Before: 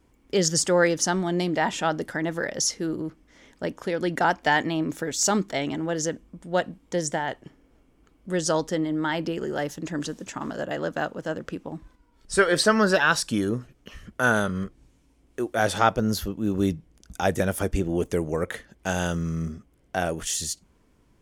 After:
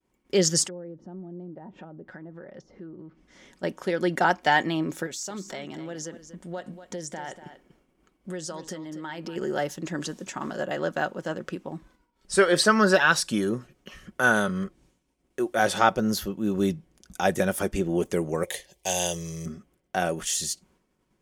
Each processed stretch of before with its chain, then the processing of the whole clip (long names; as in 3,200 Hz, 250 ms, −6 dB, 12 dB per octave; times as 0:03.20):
0:00.67–0:03.63: treble cut that deepens with the level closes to 510 Hz, closed at −21.5 dBFS + bass and treble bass +4 dB, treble +2 dB + downward compressor 2.5 to 1, threshold −46 dBFS
0:05.06–0:09.36: downward compressor 8 to 1, threshold −32 dBFS + single-tap delay 240 ms −12 dB
0:18.43–0:19.46: high-shelf EQ 2,000 Hz +10.5 dB + phaser with its sweep stopped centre 570 Hz, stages 4
whole clip: downward expander −54 dBFS; low-shelf EQ 89 Hz −11.5 dB; comb filter 5.4 ms, depth 36%